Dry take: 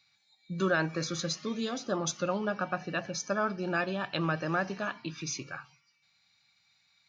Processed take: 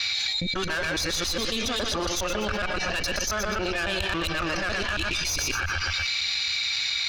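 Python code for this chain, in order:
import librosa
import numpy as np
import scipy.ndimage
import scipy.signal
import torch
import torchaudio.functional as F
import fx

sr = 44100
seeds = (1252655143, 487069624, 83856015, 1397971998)

p1 = fx.local_reverse(x, sr, ms=138.0)
p2 = fx.weighting(p1, sr, curve='D')
p3 = fx.rider(p2, sr, range_db=10, speed_s=0.5)
p4 = p2 + (p3 * librosa.db_to_amplitude(3.0))
p5 = fx.tube_stage(p4, sr, drive_db=18.0, bias=0.55)
p6 = fx.low_shelf_res(p5, sr, hz=110.0, db=9.5, q=3.0)
p7 = p6 + fx.echo_feedback(p6, sr, ms=122, feedback_pct=26, wet_db=-10.0, dry=0)
p8 = fx.env_flatten(p7, sr, amount_pct=100)
y = p8 * librosa.db_to_amplitude(-7.0)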